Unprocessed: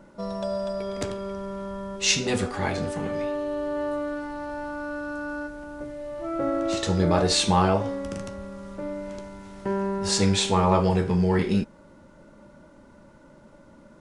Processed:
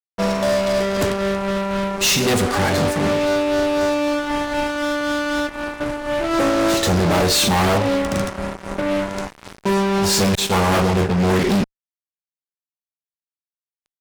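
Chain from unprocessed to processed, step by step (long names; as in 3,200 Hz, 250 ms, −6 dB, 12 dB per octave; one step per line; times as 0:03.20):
amplitude tremolo 3.9 Hz, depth 40%
0:10.35–0:11.26: downward expander −21 dBFS
fuzz pedal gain 35 dB, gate −39 dBFS
level −1.5 dB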